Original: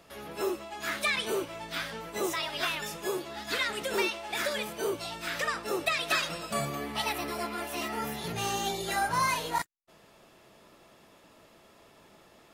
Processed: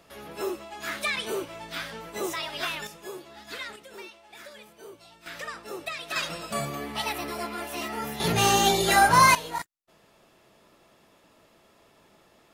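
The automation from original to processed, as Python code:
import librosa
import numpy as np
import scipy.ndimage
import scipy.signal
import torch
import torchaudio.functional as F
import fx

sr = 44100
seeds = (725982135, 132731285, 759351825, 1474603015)

y = fx.gain(x, sr, db=fx.steps((0.0, 0.0), (2.87, -7.0), (3.76, -14.5), (5.26, -6.0), (6.16, 1.0), (8.2, 10.5), (9.35, -2.0)))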